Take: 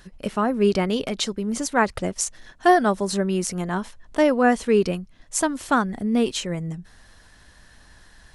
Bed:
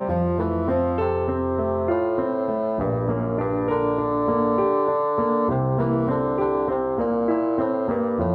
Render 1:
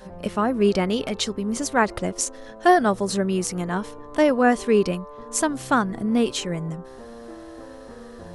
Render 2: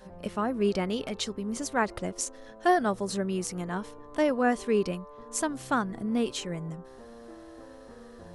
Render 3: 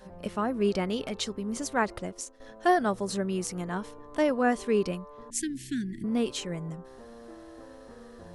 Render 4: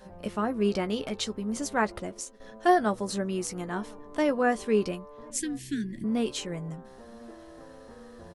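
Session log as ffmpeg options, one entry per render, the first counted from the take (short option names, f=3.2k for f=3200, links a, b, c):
-filter_complex "[1:a]volume=-18.5dB[a];[0:a][a]amix=inputs=2:normalize=0"
-af "volume=-7dB"
-filter_complex "[0:a]asettb=1/sr,asplit=3[a][b][c];[a]atrim=end=5.304[d];[b]atrim=start=5.3:end=6.04,asetpts=PTS-STARTPTS,afade=t=in:d=0.004:c=qsin,afade=t=out:st=0.736:d=0.004:c=qsin,asuperstop=centerf=800:order=20:qfactor=0.61[e];[c]atrim=start=6.036[f];[d][e]acrossfade=d=0.004:c1=hsin:c2=qsin[g];[g][f]acrossfade=d=0.004:c1=qsin:c2=hsin,asplit=2[h][i];[h]atrim=end=2.4,asetpts=PTS-STARTPTS,afade=t=out:st=1.87:d=0.53:silence=0.223872[j];[i]atrim=start=2.4,asetpts=PTS-STARTPTS,afade=t=in:d=0.004:c=hsin:silence=0.223872[k];[j][k]concat=n=2:v=0:a=1"
-filter_complex "[0:a]asplit=2[a][b];[b]adelay=14,volume=-10.5dB[c];[a][c]amix=inputs=2:normalize=0,asplit=2[d][e];[e]adelay=1050,volume=-26dB,highshelf=f=4k:g=-23.6[f];[d][f]amix=inputs=2:normalize=0"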